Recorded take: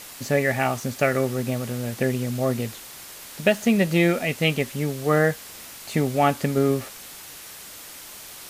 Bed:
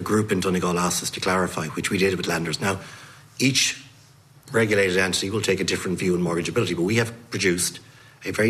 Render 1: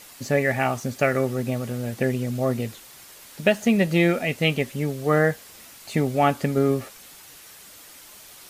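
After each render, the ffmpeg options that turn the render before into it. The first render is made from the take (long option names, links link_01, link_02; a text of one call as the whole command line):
ffmpeg -i in.wav -af "afftdn=noise_reduction=6:noise_floor=-41" out.wav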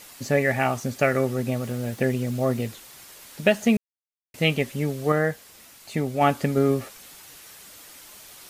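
ffmpeg -i in.wav -filter_complex "[0:a]asettb=1/sr,asplit=3[link_01][link_02][link_03];[link_01]atrim=end=1.604[link_04];[link_02]atrim=start=1.6:end=2.68,asetpts=PTS-STARTPTS,afade=type=in:duration=0.004:curve=qsin,afade=type=out:start_time=1.076:duration=0.004:curve=qsin,aeval=exprs='val(0)*gte(abs(val(0)),0.00562)':channel_layout=same[link_05];[link_03]atrim=start=2.676[link_06];[link_04][link_05]acrossfade=duration=0.004:curve1=hsin:curve2=qsin[link_07];[link_07][link_06]acrossfade=duration=0.004:curve1=qsin:curve2=hsin,asplit=5[link_08][link_09][link_10][link_11][link_12];[link_08]atrim=end=3.77,asetpts=PTS-STARTPTS,afade=type=out:start_time=3.766:duration=0.004:curve=hsin[link_13];[link_09]atrim=start=3.77:end=4.34,asetpts=PTS-STARTPTS,volume=0[link_14];[link_10]atrim=start=4.34:end=5.122,asetpts=PTS-STARTPTS,afade=type=in:duration=0.004:curve=hsin[link_15];[link_11]atrim=start=5.118:end=6.212,asetpts=PTS-STARTPTS,volume=-3.5dB[link_16];[link_12]atrim=start=6.208[link_17];[link_13][link_14][link_15]concat=n=3:v=0:a=1[link_18];[link_18][link_16]acrossfade=duration=0.004:curve1=hsin:curve2=hsin[link_19];[link_19][link_17]acrossfade=duration=0.004:curve1=hsin:curve2=hsin" out.wav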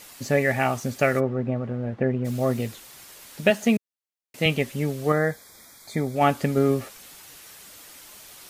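ffmpeg -i in.wav -filter_complex "[0:a]asplit=3[link_01][link_02][link_03];[link_01]afade=type=out:start_time=1.19:duration=0.02[link_04];[link_02]lowpass=1500,afade=type=in:start_time=1.19:duration=0.02,afade=type=out:start_time=2.24:duration=0.02[link_05];[link_03]afade=type=in:start_time=2.24:duration=0.02[link_06];[link_04][link_05][link_06]amix=inputs=3:normalize=0,asettb=1/sr,asplit=3[link_07][link_08][link_09];[link_07]atrim=end=3.504[link_10];[link_08]atrim=start=3.5:end=4.46,asetpts=PTS-STARTPTS,afade=type=in:duration=0.004:curve=qsin,afade=type=out:start_time=0.956:duration=0.004:curve=qsin,highpass=150[link_11];[link_09]atrim=start=4.456[link_12];[link_10][link_11]acrossfade=duration=0.004:curve1=hsin:curve2=qsin[link_13];[link_13][link_12]acrossfade=duration=0.004:curve1=qsin:curve2=hsin,asettb=1/sr,asplit=3[link_14][link_15][link_16];[link_14]atrim=end=5.134[link_17];[link_15]atrim=start=5.13:end=6.16,asetpts=PTS-STARTPTS,afade=type=in:duration=0.004:curve=qsin,afade=type=out:start_time=1.026:duration=0.004:curve=qsin,asuperstop=centerf=2800:order=12:qfactor=3.8[link_18];[link_16]atrim=start=6.156[link_19];[link_17][link_18]acrossfade=duration=0.004:curve1=hsin:curve2=qsin[link_20];[link_20][link_19]acrossfade=duration=0.004:curve1=qsin:curve2=hsin" out.wav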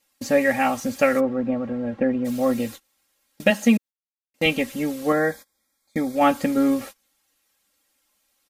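ffmpeg -i in.wav -af "aecho=1:1:3.7:0.87,agate=range=-26dB:threshold=-35dB:ratio=16:detection=peak" out.wav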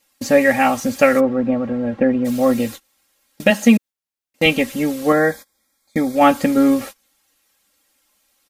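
ffmpeg -i in.wav -af "volume=5.5dB,alimiter=limit=-1dB:level=0:latency=1" out.wav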